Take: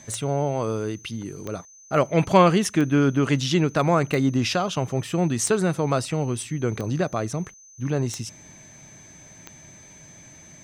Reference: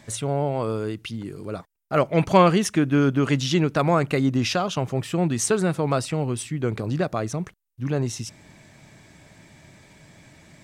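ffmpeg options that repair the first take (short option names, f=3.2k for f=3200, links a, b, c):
-af "adeclick=t=4,bandreject=f=6.2k:w=30"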